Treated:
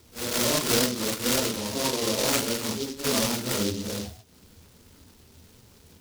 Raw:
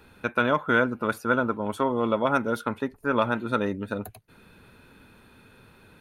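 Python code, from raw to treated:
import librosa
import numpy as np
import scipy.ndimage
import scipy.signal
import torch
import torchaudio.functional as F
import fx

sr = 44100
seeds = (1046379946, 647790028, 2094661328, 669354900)

y = fx.phase_scramble(x, sr, seeds[0], window_ms=200)
y = fx.peak_eq(y, sr, hz=81.0, db=10.0, octaves=0.36)
y = fx.noise_mod_delay(y, sr, seeds[1], noise_hz=4400.0, depth_ms=0.2)
y = F.gain(torch.from_numpy(y), -1.0).numpy()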